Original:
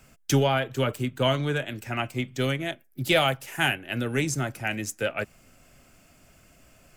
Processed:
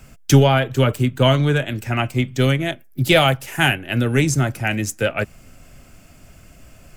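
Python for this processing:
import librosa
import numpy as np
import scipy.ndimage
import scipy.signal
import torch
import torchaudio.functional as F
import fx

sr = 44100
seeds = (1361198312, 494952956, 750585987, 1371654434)

y = fx.low_shelf(x, sr, hz=160.0, db=8.5)
y = F.gain(torch.from_numpy(y), 6.5).numpy()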